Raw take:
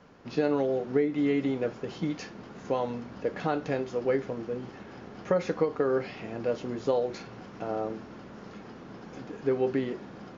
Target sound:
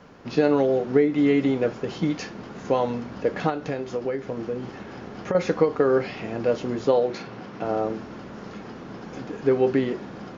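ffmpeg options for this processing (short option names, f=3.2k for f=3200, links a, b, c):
-filter_complex "[0:a]asettb=1/sr,asplit=3[a][b][c];[a]atrim=end=3.494[d];[b]atrim=start=3.49:end=5.35,asetpts=PTS-STARTPTS,afade=t=in:d=0.004:c=qsin,afade=t=out:st=1.856:d=0.004:c=qsin,acompressor=threshold=-31dB:ratio=6[e];[c]atrim=start=5.346[f];[d][e]acrossfade=d=0.004:c1=hsin:c2=qsin[g];[g][f]acrossfade=d=0.004:c1=qsin:c2=hsin,asettb=1/sr,asplit=3[h][i][j];[h]atrim=end=6.854[k];[i]atrim=start=6.85:end=7.65,asetpts=PTS-STARTPTS,afade=t=in:d=0.004:c=qsin,afade=t=out:st=0.796:d=0.004:c=qsin,highpass=110,lowpass=5.6k[l];[j]atrim=start=7.646[m];[k][l]acrossfade=d=0.004:c1=hsin:c2=qsin[n];[n][m]acrossfade=d=0.004:c1=qsin:c2=hsin,volume=6.5dB"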